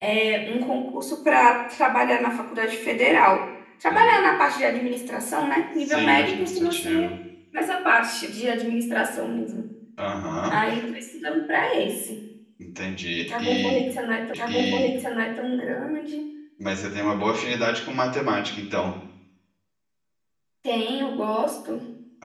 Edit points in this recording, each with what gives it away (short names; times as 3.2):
14.34 repeat of the last 1.08 s